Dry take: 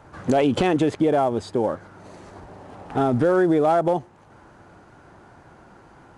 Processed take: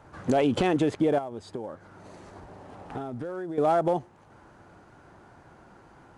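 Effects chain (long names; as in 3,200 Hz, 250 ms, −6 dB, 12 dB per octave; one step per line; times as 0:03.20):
0:01.18–0:03.58: downward compressor 6 to 1, threshold −29 dBFS, peak gain reduction 13 dB
level −4 dB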